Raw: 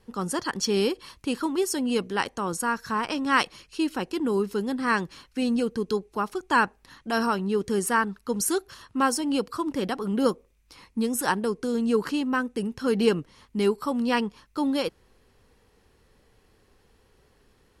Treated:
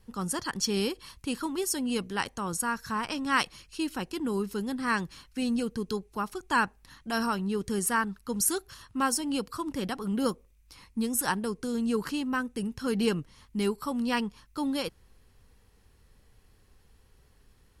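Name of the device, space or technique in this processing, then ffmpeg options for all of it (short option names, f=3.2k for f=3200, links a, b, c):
smiley-face EQ: -af "lowshelf=f=140:g=8.5,equalizer=f=420:t=o:w=1.6:g=-4.5,highshelf=f=7.8k:g=7.5,volume=-3.5dB"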